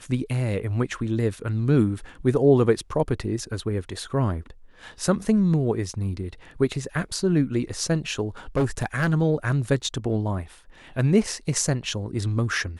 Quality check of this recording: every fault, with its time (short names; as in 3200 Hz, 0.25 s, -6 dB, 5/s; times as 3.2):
8.56–9.14 clipped -17.5 dBFS